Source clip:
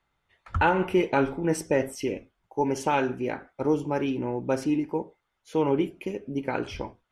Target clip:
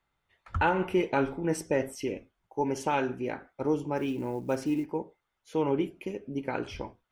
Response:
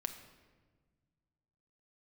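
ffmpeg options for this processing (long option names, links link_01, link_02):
-filter_complex "[0:a]asettb=1/sr,asplit=3[link_01][link_02][link_03];[link_01]atrim=end=3.974[link_04];[link_02]atrim=start=3.97:end=4.86,asetpts=PTS-STARTPTS,afade=type=in:duration=0.004:curve=qsin,afade=type=out:start_time=0.886:duration=0.004:curve=qsin,acrusher=bits=8:mode=log:mix=0:aa=0.000001[link_05];[link_03]atrim=start=4.856[link_06];[link_04][link_05]acrossfade=duration=0.004:curve1=hsin:curve2=qsin[link_07];[link_07][link_06]acrossfade=duration=0.004:curve1=qsin:curve2=hsin,volume=-3.5dB"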